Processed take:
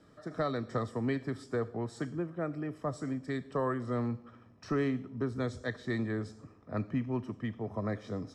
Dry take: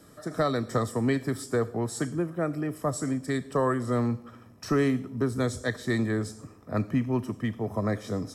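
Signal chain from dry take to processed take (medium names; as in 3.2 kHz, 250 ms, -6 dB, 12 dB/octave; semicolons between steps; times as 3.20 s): low-pass 4.4 kHz 12 dB/octave; trim -6.5 dB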